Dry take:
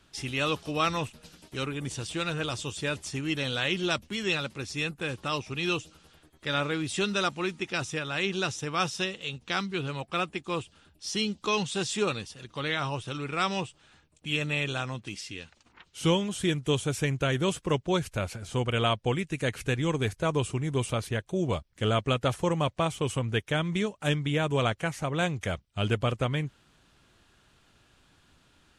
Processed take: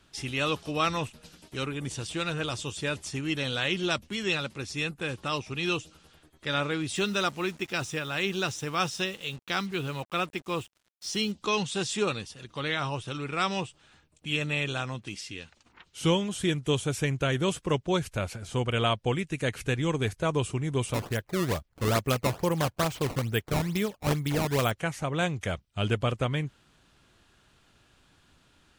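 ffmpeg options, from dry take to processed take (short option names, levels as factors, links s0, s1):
-filter_complex "[0:a]asettb=1/sr,asplit=3[s0][s1][s2];[s0]atrim=end=6.954[s3];[s1]atrim=start=6.95:end=11.32,asetpts=PTS-STARTPTS,afade=t=in:d=0.004:c=qsin,afade=t=out:st=4.366:d=0.004:c=qsin,acrusher=bits=7:mix=0:aa=0.5[s4];[s2]atrim=start=11.316[s5];[s3][s4]acrossfade=d=0.004:c1=hsin:c2=qsin[s6];[s6][s5]acrossfade=d=0.004:c1=qsin:c2=hsin,asplit=3[s7][s8][s9];[s7]afade=t=out:st=20.93:d=0.02[s10];[s8]acrusher=samples=16:mix=1:aa=0.000001:lfo=1:lforange=25.6:lforate=2.3,afade=t=in:st=20.93:d=0.02,afade=t=out:st=24.7:d=0.02[s11];[s9]afade=t=in:st=24.7:d=0.02[s12];[s10][s11][s12]amix=inputs=3:normalize=0"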